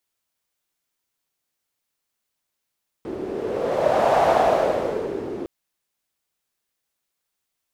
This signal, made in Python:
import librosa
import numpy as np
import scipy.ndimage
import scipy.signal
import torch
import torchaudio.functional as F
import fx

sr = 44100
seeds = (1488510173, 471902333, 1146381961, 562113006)

y = fx.wind(sr, seeds[0], length_s=2.41, low_hz=350.0, high_hz=710.0, q=4.3, gusts=1, swing_db=13.0)